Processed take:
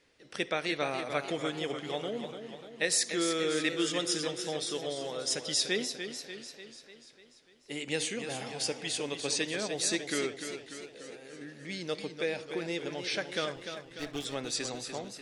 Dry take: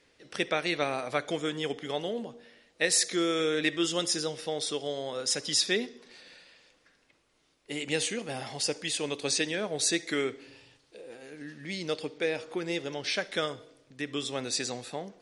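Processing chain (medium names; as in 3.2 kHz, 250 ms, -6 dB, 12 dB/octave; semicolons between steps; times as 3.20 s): 13.56–14.25 s: comb filter that takes the minimum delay 6.6 ms; modulated delay 295 ms, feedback 57%, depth 78 cents, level -8.5 dB; trim -3 dB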